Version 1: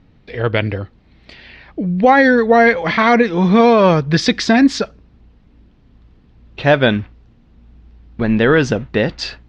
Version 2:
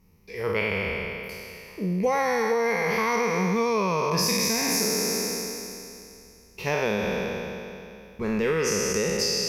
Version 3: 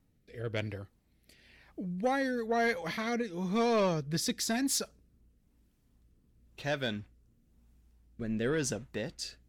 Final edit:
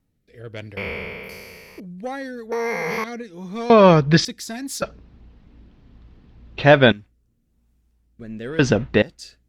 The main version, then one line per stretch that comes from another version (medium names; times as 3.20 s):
3
0.77–1.80 s: from 2
2.52–3.04 s: from 2
3.70–4.25 s: from 1
4.82–6.92 s: from 1
8.59–9.02 s: from 1